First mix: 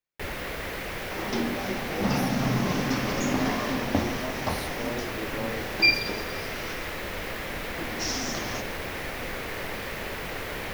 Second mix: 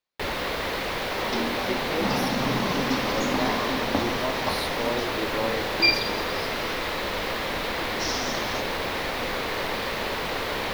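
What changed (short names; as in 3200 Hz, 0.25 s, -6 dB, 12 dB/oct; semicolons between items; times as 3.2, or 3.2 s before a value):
second sound -6.0 dB; master: add graphic EQ 250/500/1000/4000 Hz +4/+4/+8/+10 dB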